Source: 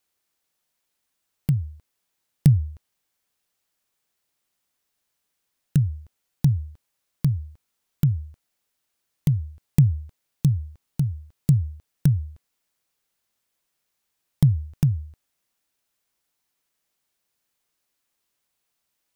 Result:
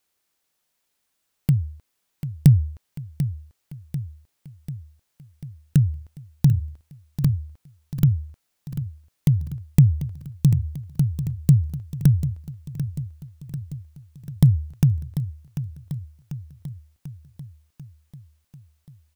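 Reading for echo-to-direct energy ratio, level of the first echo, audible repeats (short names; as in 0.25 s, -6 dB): -9.5 dB, -11.5 dB, 6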